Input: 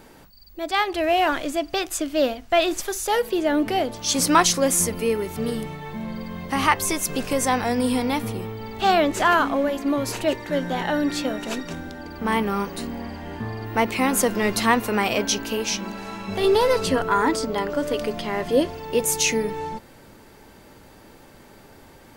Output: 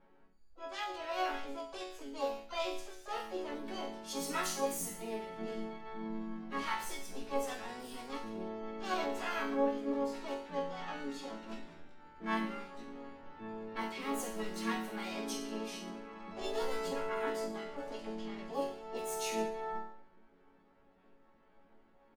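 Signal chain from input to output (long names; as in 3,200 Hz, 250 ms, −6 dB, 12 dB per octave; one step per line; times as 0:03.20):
low-pass that shuts in the quiet parts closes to 1,500 Hz, open at −15.5 dBFS
resonators tuned to a chord F#3 minor, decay 0.56 s
pitch-shifted copies added −3 semitones −17 dB, +7 semitones −6 dB, +12 semitones −12 dB
level +1 dB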